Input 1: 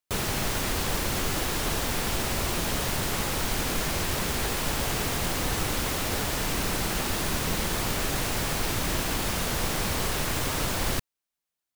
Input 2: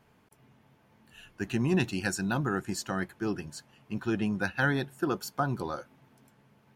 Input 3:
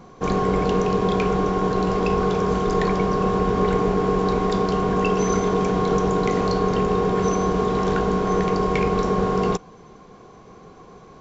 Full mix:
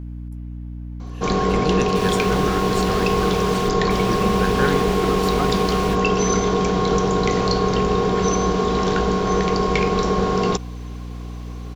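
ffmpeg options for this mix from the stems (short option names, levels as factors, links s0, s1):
-filter_complex "[0:a]equalizer=f=2800:w=0.54:g=12.5,asoftclip=type=tanh:threshold=0.1,adelay=1850,volume=0.355,asplit=2[s0][s1];[s1]volume=0.106[s2];[1:a]volume=1.19,asplit=2[s3][s4];[2:a]equalizer=f=4500:w=0.76:g=8,adelay=1000,volume=1.12[s5];[s4]apad=whole_len=599920[s6];[s0][s6]sidechaingate=range=0.0224:threshold=0.00282:ratio=16:detection=peak[s7];[s2]aecho=0:1:75:1[s8];[s7][s3][s5][s8]amix=inputs=4:normalize=0,aeval=exprs='val(0)+0.0316*(sin(2*PI*60*n/s)+sin(2*PI*2*60*n/s)/2+sin(2*PI*3*60*n/s)/3+sin(2*PI*4*60*n/s)/4+sin(2*PI*5*60*n/s)/5)':c=same"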